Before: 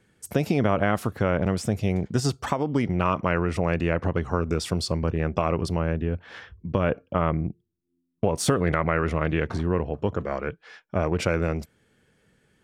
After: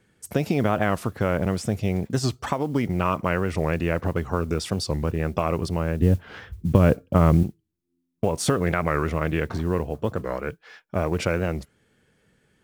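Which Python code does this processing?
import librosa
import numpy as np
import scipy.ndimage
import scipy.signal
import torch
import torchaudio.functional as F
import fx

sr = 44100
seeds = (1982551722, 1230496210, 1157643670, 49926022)

y = fx.low_shelf(x, sr, hz=380.0, db=10.5, at=(6.0, 7.44))
y = fx.mod_noise(y, sr, seeds[0], snr_db=32)
y = fx.record_warp(y, sr, rpm=45.0, depth_cents=160.0)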